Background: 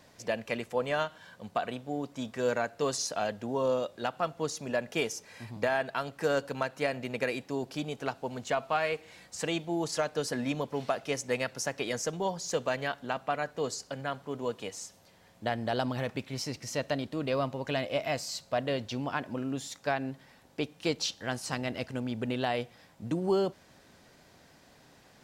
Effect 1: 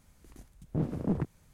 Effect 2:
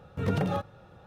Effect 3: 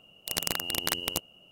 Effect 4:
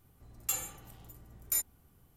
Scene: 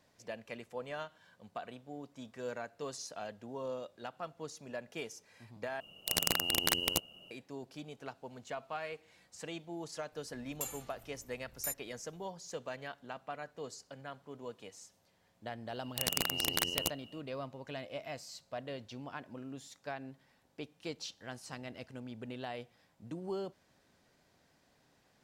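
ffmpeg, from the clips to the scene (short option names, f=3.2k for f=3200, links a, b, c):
-filter_complex "[3:a]asplit=2[a][b];[0:a]volume=-11.5dB[c];[a]acontrast=82[d];[b]acontrast=82[e];[c]asplit=2[f][g];[f]atrim=end=5.804[h];[d]atrim=end=1.51,asetpts=PTS-STARTPTS,volume=-6.5dB[i];[g]atrim=start=7.306[j];[4:a]atrim=end=2.16,asetpts=PTS-STARTPTS,volume=-7.5dB,afade=t=in:d=0.004:c=hsin,afade=t=out:st=2.156:d=0.004:c=hsin,adelay=10120[k];[e]atrim=end=1.51,asetpts=PTS-STARTPTS,volume=-8.5dB,afade=t=in:d=0.004:c=hsin,afade=t=out:st=1.506:d=0.004:c=hsin,adelay=15700[l];[h][i]acrossfade=d=0.004:c1=hsin:c2=hsin[m];[m][j]acrossfade=d=0.004:c1=hsin:c2=hsin[n];[n][k][l]amix=inputs=3:normalize=0"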